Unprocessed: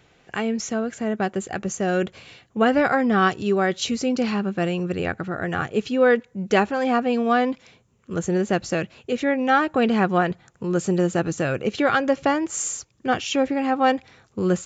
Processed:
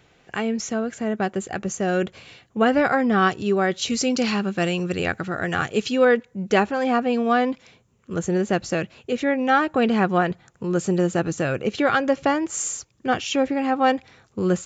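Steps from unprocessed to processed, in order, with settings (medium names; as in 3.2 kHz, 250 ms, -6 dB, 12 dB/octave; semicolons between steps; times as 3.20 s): 3.90–6.05 s: treble shelf 2.5 kHz +10 dB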